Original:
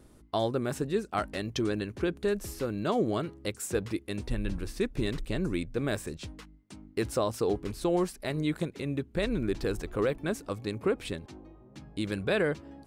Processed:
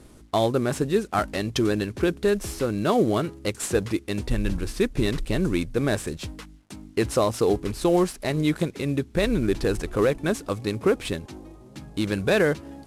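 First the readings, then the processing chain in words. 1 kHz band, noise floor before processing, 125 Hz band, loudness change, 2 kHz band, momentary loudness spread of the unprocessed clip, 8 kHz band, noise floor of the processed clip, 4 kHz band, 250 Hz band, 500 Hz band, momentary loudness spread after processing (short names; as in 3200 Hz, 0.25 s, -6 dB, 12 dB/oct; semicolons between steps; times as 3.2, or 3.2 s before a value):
+7.0 dB, -55 dBFS, +7.0 dB, +7.0 dB, +6.5 dB, 10 LU, +7.5 dB, -48 dBFS, +6.5 dB, +7.0 dB, +7.0 dB, 10 LU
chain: CVSD 64 kbps; gain +7 dB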